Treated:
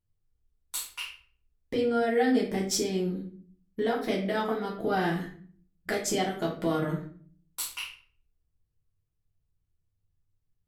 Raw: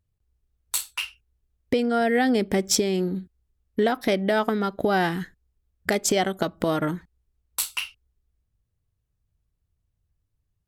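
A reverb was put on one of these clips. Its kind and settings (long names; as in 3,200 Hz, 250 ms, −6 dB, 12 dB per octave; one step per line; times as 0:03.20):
rectangular room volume 47 cubic metres, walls mixed, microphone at 1 metre
level −11.5 dB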